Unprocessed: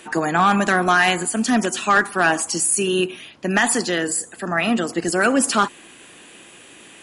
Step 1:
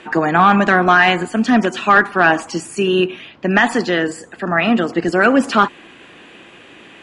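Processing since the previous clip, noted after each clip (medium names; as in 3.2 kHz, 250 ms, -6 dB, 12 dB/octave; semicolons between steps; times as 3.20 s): low-pass 3.1 kHz 12 dB/octave; trim +5 dB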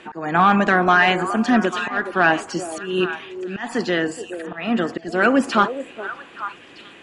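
slow attack 258 ms; repeats whose band climbs or falls 421 ms, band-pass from 470 Hz, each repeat 1.4 oct, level -7.5 dB; trim -3.5 dB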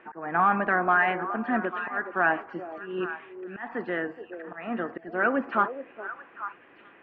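low-pass 2 kHz 24 dB/octave; bass shelf 330 Hz -9.5 dB; trim -5.5 dB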